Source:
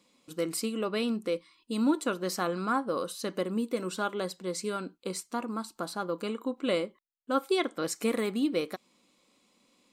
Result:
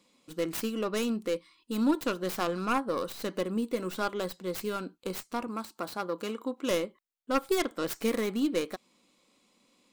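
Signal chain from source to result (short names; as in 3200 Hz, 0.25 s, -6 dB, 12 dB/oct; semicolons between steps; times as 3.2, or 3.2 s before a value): tracing distortion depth 0.35 ms; 5.47–6.71 HPF 180 Hz 6 dB/oct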